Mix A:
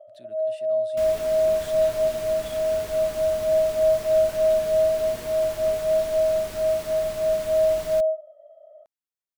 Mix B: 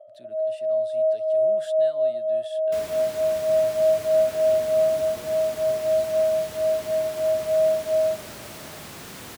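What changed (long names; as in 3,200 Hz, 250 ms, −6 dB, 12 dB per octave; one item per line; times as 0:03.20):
second sound: entry +1.75 s
master: add high-pass filter 99 Hz 12 dB per octave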